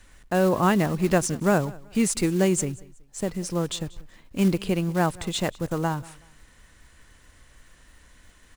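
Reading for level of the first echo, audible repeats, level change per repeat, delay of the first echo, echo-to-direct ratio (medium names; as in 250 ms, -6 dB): -22.5 dB, 2, -11.0 dB, 187 ms, -22.0 dB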